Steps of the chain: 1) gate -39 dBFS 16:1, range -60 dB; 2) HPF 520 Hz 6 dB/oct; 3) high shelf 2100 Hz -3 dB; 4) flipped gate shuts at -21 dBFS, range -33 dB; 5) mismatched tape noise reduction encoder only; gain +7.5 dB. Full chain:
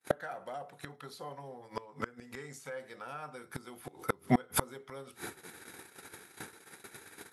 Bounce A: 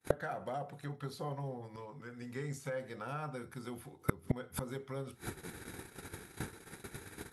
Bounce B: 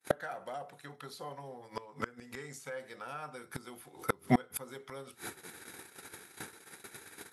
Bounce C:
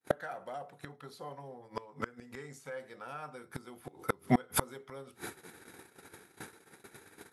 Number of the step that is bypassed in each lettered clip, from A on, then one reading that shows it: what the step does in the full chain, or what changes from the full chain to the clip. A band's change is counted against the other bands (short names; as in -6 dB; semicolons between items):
2, 125 Hz band +7.0 dB; 3, crest factor change -1.5 dB; 5, momentary loudness spread change +4 LU